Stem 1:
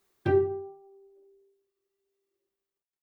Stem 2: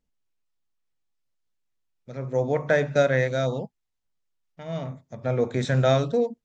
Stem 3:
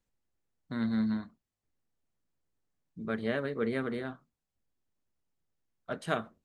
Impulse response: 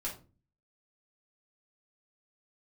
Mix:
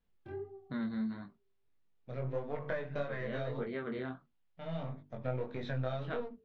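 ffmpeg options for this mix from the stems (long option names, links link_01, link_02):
-filter_complex "[0:a]flanger=delay=17.5:depth=7.4:speed=1.9,highshelf=frequency=4100:gain=-7,volume=-14dB[link_01];[1:a]aeval=exprs='if(lt(val(0),0),0.447*val(0),val(0))':channel_layout=same,bandreject=frequency=50:width_type=h:width=6,bandreject=frequency=100:width_type=h:width=6,bandreject=frequency=150:width_type=h:width=6,bandreject=frequency=200:width_type=h:width=6,bandreject=frequency=250:width_type=h:width=6,bandreject=frequency=300:width_type=h:width=6,bandreject=frequency=350:width_type=h:width=6,bandreject=frequency=400:width_type=h:width=6,bandreject=frequency=450:width_type=h:width=6,volume=1dB[link_02];[2:a]volume=2dB[link_03];[link_02][link_03]amix=inputs=2:normalize=0,lowpass=frequency=3900:width=0.5412,lowpass=frequency=3900:width=1.3066,acompressor=threshold=-31dB:ratio=6,volume=0dB[link_04];[link_01][link_04]amix=inputs=2:normalize=0,flanger=delay=20:depth=3.7:speed=1.6"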